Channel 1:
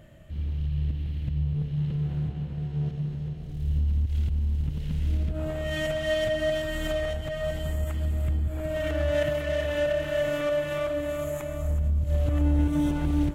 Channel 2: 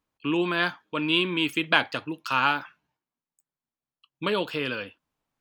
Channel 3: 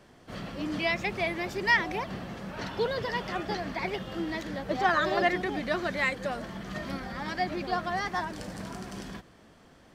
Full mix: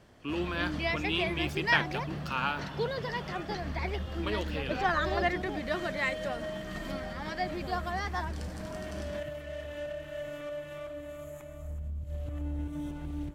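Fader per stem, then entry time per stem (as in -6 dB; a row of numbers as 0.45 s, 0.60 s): -12.5 dB, -8.5 dB, -3.5 dB; 0.00 s, 0.00 s, 0.00 s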